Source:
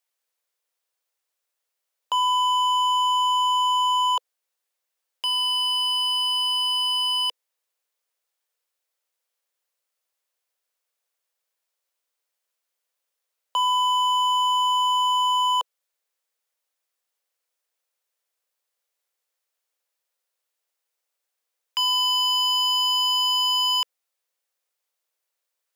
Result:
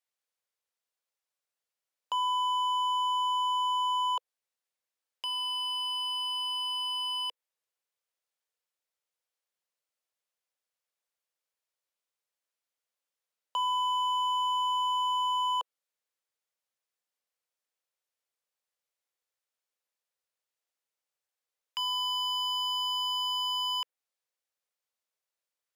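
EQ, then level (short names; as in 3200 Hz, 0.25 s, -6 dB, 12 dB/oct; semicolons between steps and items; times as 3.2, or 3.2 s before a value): high shelf 12000 Hz -7.5 dB; dynamic EQ 5600 Hz, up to -6 dB, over -38 dBFS, Q 0.91; -7.0 dB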